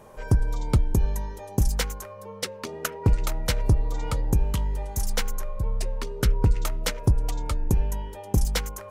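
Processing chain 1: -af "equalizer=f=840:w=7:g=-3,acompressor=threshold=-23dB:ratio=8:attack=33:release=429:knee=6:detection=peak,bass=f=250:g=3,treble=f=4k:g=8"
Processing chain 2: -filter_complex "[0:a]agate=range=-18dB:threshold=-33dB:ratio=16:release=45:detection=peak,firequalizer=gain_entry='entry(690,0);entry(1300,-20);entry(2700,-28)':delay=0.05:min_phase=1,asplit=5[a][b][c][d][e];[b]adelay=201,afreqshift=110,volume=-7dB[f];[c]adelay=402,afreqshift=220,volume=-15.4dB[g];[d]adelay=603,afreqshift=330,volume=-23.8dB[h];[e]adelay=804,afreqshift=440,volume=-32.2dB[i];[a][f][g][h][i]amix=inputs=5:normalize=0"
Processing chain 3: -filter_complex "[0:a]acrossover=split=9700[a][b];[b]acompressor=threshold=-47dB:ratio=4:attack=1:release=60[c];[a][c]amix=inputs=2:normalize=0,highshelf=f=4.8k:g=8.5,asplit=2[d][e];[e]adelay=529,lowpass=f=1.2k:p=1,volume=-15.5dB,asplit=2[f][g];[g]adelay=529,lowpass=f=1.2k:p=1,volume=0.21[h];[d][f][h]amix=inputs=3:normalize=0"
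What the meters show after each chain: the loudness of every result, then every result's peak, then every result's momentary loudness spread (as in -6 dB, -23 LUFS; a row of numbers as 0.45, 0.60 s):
-28.0, -26.0, -27.0 LUFS; -8.5, -10.0, -8.5 dBFS; 5, 7, 7 LU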